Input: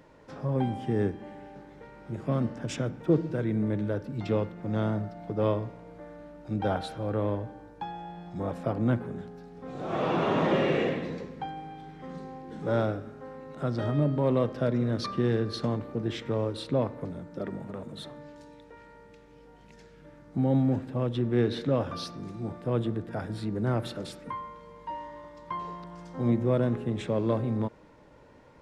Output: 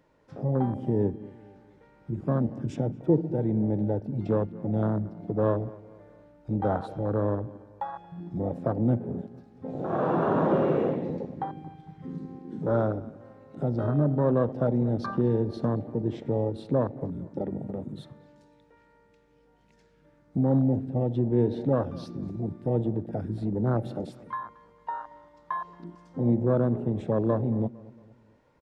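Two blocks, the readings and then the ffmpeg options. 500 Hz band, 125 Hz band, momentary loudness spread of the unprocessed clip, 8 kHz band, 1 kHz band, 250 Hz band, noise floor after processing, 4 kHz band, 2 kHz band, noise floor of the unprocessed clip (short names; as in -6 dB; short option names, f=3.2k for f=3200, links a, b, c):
+1.5 dB, +2.0 dB, 17 LU, n/a, +1.0 dB, +2.0 dB, -62 dBFS, under -10 dB, -5.0 dB, -54 dBFS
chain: -filter_complex "[0:a]afwtdn=0.0316,asplit=2[a][b];[b]acompressor=threshold=-39dB:ratio=6,volume=2dB[c];[a][c]amix=inputs=2:normalize=0,asplit=2[d][e];[e]adelay=228,lowpass=f=2.4k:p=1,volume=-20dB,asplit=2[f][g];[g]adelay=228,lowpass=f=2.4k:p=1,volume=0.45,asplit=2[h][i];[i]adelay=228,lowpass=f=2.4k:p=1,volume=0.45[j];[d][f][h][j]amix=inputs=4:normalize=0"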